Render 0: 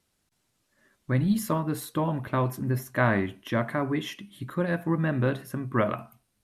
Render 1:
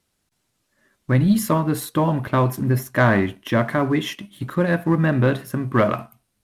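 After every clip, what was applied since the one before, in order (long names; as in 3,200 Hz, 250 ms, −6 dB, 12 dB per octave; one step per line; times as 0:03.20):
leveller curve on the samples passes 1
level +4 dB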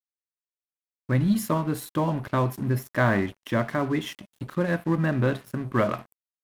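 dead-zone distortion −39.5 dBFS
level −5 dB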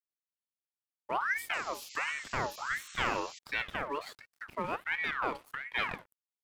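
sound drawn into the spectrogram noise, 0:01.53–0:03.39, 3,100–6,600 Hz −40 dBFS
ring modulator whose carrier an LFO sweeps 1,400 Hz, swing 50%, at 1.4 Hz
level −7.5 dB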